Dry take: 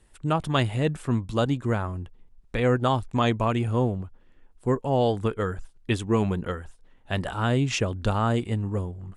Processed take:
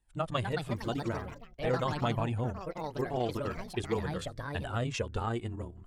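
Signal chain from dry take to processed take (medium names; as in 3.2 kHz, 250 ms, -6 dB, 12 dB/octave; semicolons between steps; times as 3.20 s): gate -51 dBFS, range -10 dB; granular stretch 0.64×, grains 60 ms; flange 0.44 Hz, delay 1.1 ms, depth 2.1 ms, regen +39%; ever faster or slower copies 294 ms, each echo +4 st, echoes 3, each echo -6 dB; trim -3.5 dB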